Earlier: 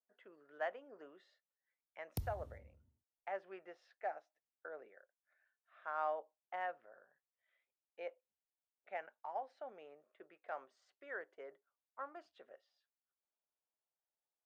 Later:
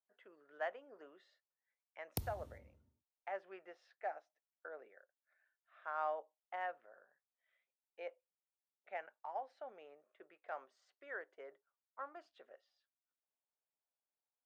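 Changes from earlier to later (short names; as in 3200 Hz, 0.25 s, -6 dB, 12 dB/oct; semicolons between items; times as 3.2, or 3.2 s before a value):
background +6.0 dB; master: add low shelf 180 Hz -10.5 dB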